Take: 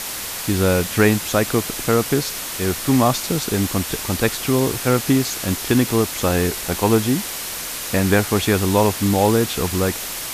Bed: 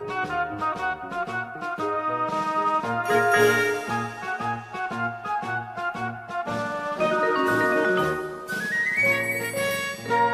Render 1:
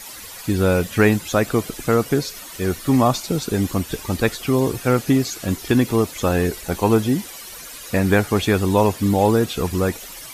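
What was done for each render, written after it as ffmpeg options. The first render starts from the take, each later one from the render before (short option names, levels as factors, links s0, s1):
-af "afftdn=nr=13:nf=-29"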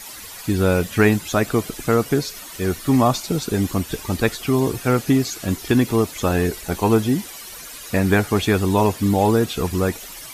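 -af "bandreject=f=520:w=15"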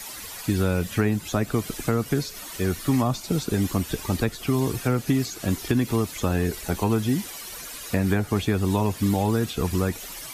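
-filter_complex "[0:a]acrossover=split=250|1000[s0][s1][s2];[s0]acompressor=threshold=0.0891:ratio=4[s3];[s1]acompressor=threshold=0.0398:ratio=4[s4];[s2]acompressor=threshold=0.0224:ratio=4[s5];[s3][s4][s5]amix=inputs=3:normalize=0"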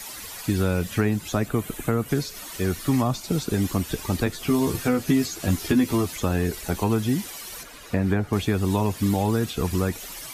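-filter_complex "[0:a]asettb=1/sr,asplit=3[s0][s1][s2];[s0]atrim=end=1.484[s3];[s1]atrim=start=1.48:end=2.09,asetpts=PTS-STARTPTS,afade=t=in:d=0.004:c=qsin,afade=t=out:st=0.606:d=0.004:c=qsin,equalizer=f=5100:w=1.9:g=-11.5[s4];[s2]atrim=start=2.086[s5];[s3][s4]acrossfade=d=0.004:c1=hsin:c2=qsin[s6];[s6][s5]acrossfade=d=0.004:c1=qsin:c2=hsin,asettb=1/sr,asplit=3[s7][s8][s9];[s7]atrim=end=4.254[s10];[s8]atrim=start=4.25:end=6.16,asetpts=PTS-STARTPTS,afade=t=in:d=0.004:c=qsin,afade=t=out:st=1.906:d=0.004:c=qsin,asplit=2[s11][s12];[s12]adelay=12,volume=0.708[s13];[s11][s13]amix=inputs=2:normalize=0,atrim=end_sample=84231[s14];[s9]atrim=start=6.156[s15];[s10][s14]acrossfade=d=0.004:c1=hsin:c2=qsin[s16];[s16][s15]acrossfade=d=0.004:c1=qsin:c2=hsin,asettb=1/sr,asplit=3[s17][s18][s19];[s17]atrim=end=7.634[s20];[s18]atrim=start=7.63:end=8.33,asetpts=PTS-STARTPTS,afade=t=in:d=0.004:c=qsin,afade=t=out:st=0.696:d=0.004:c=qsin,highshelf=f=3900:g=-12[s21];[s19]atrim=start=8.326[s22];[s20][s21]acrossfade=d=0.004:c1=hsin:c2=qsin[s23];[s23][s22]acrossfade=d=0.004:c1=qsin:c2=hsin"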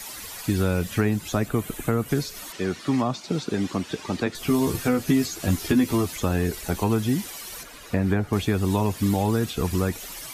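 -filter_complex "[0:a]asettb=1/sr,asplit=3[s0][s1][s2];[s0]atrim=end=2.524[s3];[s1]atrim=start=2.52:end=4.35,asetpts=PTS-STARTPTS,afade=t=in:d=0.004:c=qsin,afade=t=out:st=1.826:d=0.004:c=qsin,highpass=160,lowpass=5600[s4];[s2]atrim=start=4.346[s5];[s3][s4]acrossfade=d=0.004:c1=hsin:c2=qsin[s6];[s6][s5]acrossfade=d=0.004:c1=qsin:c2=hsin"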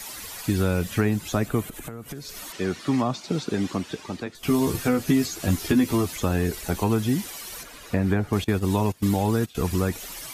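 -filter_complex "[0:a]asettb=1/sr,asplit=3[s0][s1][s2];[s0]atrim=end=1.664[s3];[s1]atrim=start=1.66:end=2.29,asetpts=PTS-STARTPTS,afade=t=in:d=0.004:c=qsin,afade=t=out:st=0.626:d=0.004:c=qsin,acompressor=threshold=0.0224:ratio=6:attack=3.2:release=140:knee=1:detection=peak[s4];[s2]atrim=start=2.286[s5];[s3][s4]acrossfade=d=0.004:c1=hsin:c2=qsin[s6];[s6][s5]acrossfade=d=0.004:c1=qsin:c2=hsin,asettb=1/sr,asplit=3[s7][s8][s9];[s7]atrim=end=8.444[s10];[s8]atrim=start=8.44:end=9.55,asetpts=PTS-STARTPTS,afade=t=in:d=0.004:c=qsin,afade=t=out:st=1.106:d=0.004:c=qsin,agate=range=0.141:threshold=0.0562:ratio=16:release=100:detection=peak[s11];[s9]atrim=start=9.546[s12];[s10][s11]acrossfade=d=0.004:c1=hsin:c2=qsin[s13];[s13][s12]acrossfade=d=0.004:c1=qsin:c2=hsin,asplit=2[s14][s15];[s14]atrim=end=4.43,asetpts=PTS-STARTPTS,afade=t=out:st=3.69:d=0.74:silence=0.251189[s16];[s15]atrim=start=4.43,asetpts=PTS-STARTPTS,afade=t=in:d=0.004:c=hsin:silence=0.251189[s17];[s16][s17]concat=n=2:v=0:a=1"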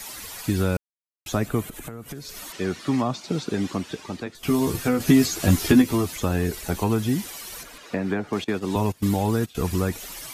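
-filter_complex "[0:a]asettb=1/sr,asplit=3[s0][s1][s2];[s0]atrim=end=5.004[s3];[s1]atrim=start=5:end=5.82,asetpts=PTS-STARTPTS,afade=t=in:d=0.004:c=qsin,afade=t=out:st=0.816:d=0.004:c=qsin,acontrast=23[s4];[s2]atrim=start=5.816[s5];[s3][s4]acrossfade=d=0.004:c1=hsin:c2=qsin[s6];[s6][s5]acrossfade=d=0.004:c1=qsin:c2=hsin,asettb=1/sr,asplit=3[s7][s8][s9];[s7]atrim=end=7.784[s10];[s8]atrim=start=7.78:end=8.76,asetpts=PTS-STARTPTS,afade=t=in:d=0.004:c=qsin,afade=t=out:st=0.976:d=0.004:c=qsin,acrossover=split=170 7700:gain=0.126 1 0.251[s11][s12][s13];[s11][s12][s13]amix=inputs=3:normalize=0[s14];[s9]atrim=start=8.756[s15];[s10][s14]acrossfade=d=0.004:c1=hsin:c2=qsin[s16];[s16][s15]acrossfade=d=0.004:c1=qsin:c2=hsin,asplit=3[s17][s18][s19];[s17]atrim=end=0.77,asetpts=PTS-STARTPTS,afade=t=out:st=0.766:d=0.004:c=hsin[s20];[s18]atrim=start=0.77:end=1.26,asetpts=PTS-STARTPTS,volume=0[s21];[s19]atrim=start=1.26,asetpts=PTS-STARTPTS,afade=t=in:d=0.004:c=hsin[s22];[s20][s21][s22]concat=n=3:v=0:a=1"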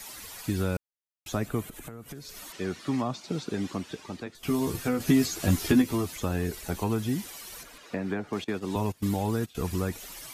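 -af "volume=0.531"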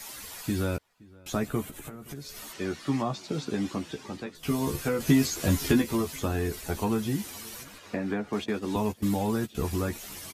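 -filter_complex "[0:a]asplit=2[s0][s1];[s1]adelay=14,volume=0.501[s2];[s0][s2]amix=inputs=2:normalize=0,asplit=2[s3][s4];[s4]adelay=520,lowpass=f=2300:p=1,volume=0.0631,asplit=2[s5][s6];[s6]adelay=520,lowpass=f=2300:p=1,volume=0.5,asplit=2[s7][s8];[s8]adelay=520,lowpass=f=2300:p=1,volume=0.5[s9];[s3][s5][s7][s9]amix=inputs=4:normalize=0"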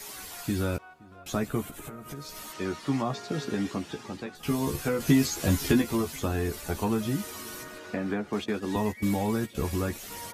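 -filter_complex "[1:a]volume=0.0668[s0];[0:a][s0]amix=inputs=2:normalize=0"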